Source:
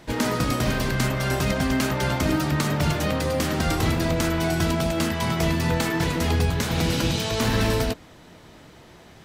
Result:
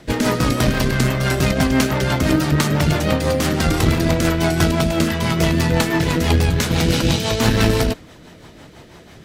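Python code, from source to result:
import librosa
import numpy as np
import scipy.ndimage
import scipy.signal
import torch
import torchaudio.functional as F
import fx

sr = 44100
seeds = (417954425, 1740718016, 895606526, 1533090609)

y = fx.rotary(x, sr, hz=6.0)
y = fx.cheby_harmonics(y, sr, harmonics=(2, 6), levels_db=(-12, -44), full_scale_db=-11.0)
y = y * librosa.db_to_amplitude(7.5)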